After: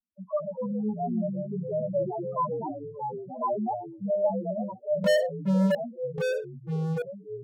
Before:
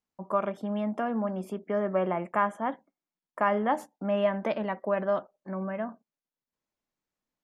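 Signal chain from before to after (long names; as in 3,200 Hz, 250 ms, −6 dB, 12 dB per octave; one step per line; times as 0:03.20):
spectral peaks only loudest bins 1
0:05.04–0:05.75: leveller curve on the samples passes 5
delay with pitch and tempo change per echo 184 ms, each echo −3 semitones, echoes 3, each echo −6 dB
level +6 dB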